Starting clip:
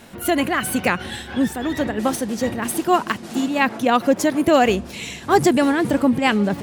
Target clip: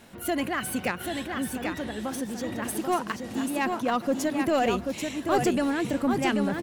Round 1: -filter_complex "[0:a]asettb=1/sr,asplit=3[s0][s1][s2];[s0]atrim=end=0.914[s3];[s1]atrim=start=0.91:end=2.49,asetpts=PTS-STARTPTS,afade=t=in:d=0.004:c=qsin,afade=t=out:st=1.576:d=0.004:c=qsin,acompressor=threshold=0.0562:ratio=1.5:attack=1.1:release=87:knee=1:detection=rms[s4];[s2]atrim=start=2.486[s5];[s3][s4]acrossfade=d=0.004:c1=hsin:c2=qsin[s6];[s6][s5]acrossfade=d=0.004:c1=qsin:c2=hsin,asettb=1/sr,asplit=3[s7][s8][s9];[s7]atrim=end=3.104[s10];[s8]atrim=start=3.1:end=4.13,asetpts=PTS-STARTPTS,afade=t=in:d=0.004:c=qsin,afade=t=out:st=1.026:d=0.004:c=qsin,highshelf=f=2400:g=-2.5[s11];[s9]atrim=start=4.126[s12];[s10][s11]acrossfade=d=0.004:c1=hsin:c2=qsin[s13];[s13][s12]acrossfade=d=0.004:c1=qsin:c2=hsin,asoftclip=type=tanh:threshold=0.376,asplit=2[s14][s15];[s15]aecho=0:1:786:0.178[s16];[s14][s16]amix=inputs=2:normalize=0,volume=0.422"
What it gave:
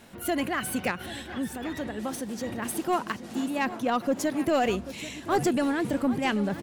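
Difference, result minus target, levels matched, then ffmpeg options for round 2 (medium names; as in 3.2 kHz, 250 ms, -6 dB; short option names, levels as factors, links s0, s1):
echo-to-direct -10 dB
-filter_complex "[0:a]asettb=1/sr,asplit=3[s0][s1][s2];[s0]atrim=end=0.914[s3];[s1]atrim=start=0.91:end=2.49,asetpts=PTS-STARTPTS,afade=t=in:d=0.004:c=qsin,afade=t=out:st=1.576:d=0.004:c=qsin,acompressor=threshold=0.0562:ratio=1.5:attack=1.1:release=87:knee=1:detection=rms[s4];[s2]atrim=start=2.486[s5];[s3][s4]acrossfade=d=0.004:c1=hsin:c2=qsin[s6];[s6][s5]acrossfade=d=0.004:c1=qsin:c2=hsin,asettb=1/sr,asplit=3[s7][s8][s9];[s7]atrim=end=3.104[s10];[s8]atrim=start=3.1:end=4.13,asetpts=PTS-STARTPTS,afade=t=in:d=0.004:c=qsin,afade=t=out:st=1.026:d=0.004:c=qsin,highshelf=f=2400:g=-2.5[s11];[s9]atrim=start=4.126[s12];[s10][s11]acrossfade=d=0.004:c1=hsin:c2=qsin[s13];[s13][s12]acrossfade=d=0.004:c1=qsin:c2=hsin,asoftclip=type=tanh:threshold=0.376,asplit=2[s14][s15];[s15]aecho=0:1:786:0.562[s16];[s14][s16]amix=inputs=2:normalize=0,volume=0.422"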